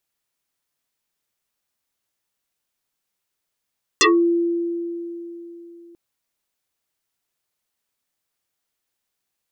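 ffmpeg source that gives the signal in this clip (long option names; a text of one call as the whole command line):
ffmpeg -f lavfi -i "aevalsrc='0.299*pow(10,-3*t/3.57)*sin(2*PI*341*t+11*pow(10,-3*t/0.21)*sin(2*PI*2.26*341*t))':duration=1.94:sample_rate=44100" out.wav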